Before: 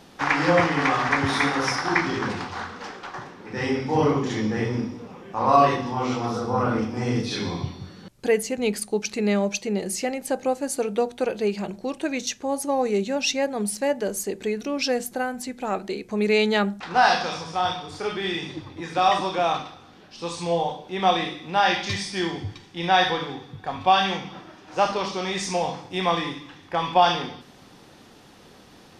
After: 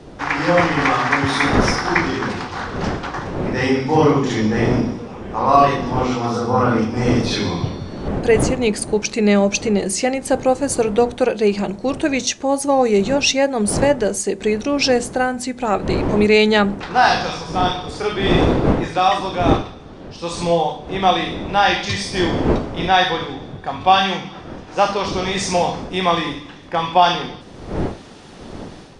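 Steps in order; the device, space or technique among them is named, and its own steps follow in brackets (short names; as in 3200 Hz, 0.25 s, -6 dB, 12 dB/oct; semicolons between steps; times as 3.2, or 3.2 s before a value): smartphone video outdoors (wind noise 410 Hz -32 dBFS; AGC gain up to 8.5 dB; AAC 96 kbps 22050 Hz)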